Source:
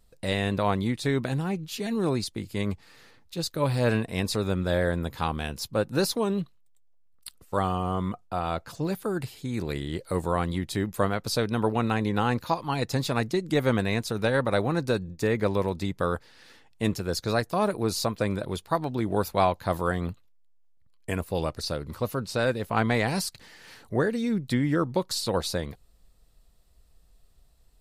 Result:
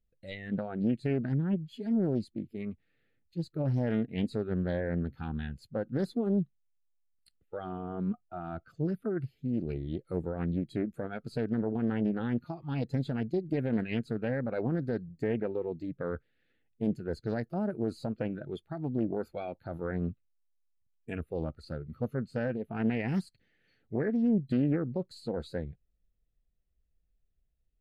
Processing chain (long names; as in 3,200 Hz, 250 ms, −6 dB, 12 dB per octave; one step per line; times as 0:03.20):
noise reduction from a noise print of the clip's start 16 dB
dynamic equaliser 220 Hz, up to +5 dB, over −42 dBFS, Q 3.5
brickwall limiter −18.5 dBFS, peak gain reduction 8.5 dB
head-to-tape spacing loss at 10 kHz 23 dB
phaser with its sweep stopped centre 2,400 Hz, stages 4
highs frequency-modulated by the lows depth 0.35 ms